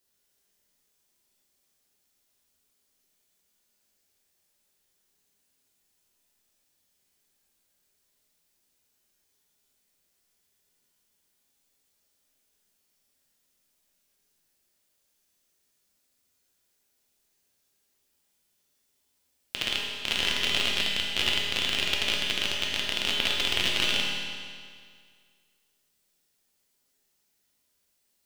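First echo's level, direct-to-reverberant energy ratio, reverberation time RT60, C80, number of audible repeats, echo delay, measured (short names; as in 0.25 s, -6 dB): none, -3.5 dB, 2.0 s, 1.5 dB, none, none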